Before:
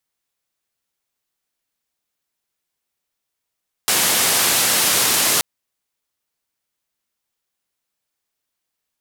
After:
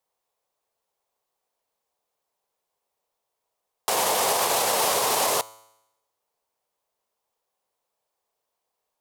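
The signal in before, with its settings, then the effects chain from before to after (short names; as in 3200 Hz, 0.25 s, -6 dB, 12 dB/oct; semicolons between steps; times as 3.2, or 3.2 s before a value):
noise band 120–13000 Hz, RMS -17 dBFS 1.53 s
band shelf 670 Hz +13 dB; limiter -9.5 dBFS; resonator 110 Hz, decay 0.88 s, harmonics all, mix 40%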